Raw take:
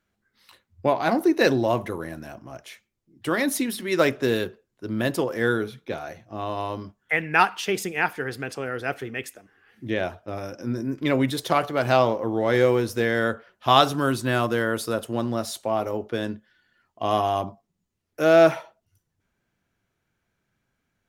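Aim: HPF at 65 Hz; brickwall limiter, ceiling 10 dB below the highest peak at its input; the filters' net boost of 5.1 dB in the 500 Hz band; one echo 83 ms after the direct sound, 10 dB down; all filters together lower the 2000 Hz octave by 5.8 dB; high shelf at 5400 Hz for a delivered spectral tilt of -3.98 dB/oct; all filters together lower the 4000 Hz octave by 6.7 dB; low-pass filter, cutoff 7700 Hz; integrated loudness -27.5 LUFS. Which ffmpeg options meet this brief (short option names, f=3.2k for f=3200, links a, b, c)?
-af "highpass=65,lowpass=7.7k,equalizer=f=500:t=o:g=7,equalizer=f=2k:t=o:g=-7.5,equalizer=f=4k:t=o:g=-7,highshelf=f=5.4k:g=3.5,alimiter=limit=-11dB:level=0:latency=1,aecho=1:1:83:0.316,volume=-4dB"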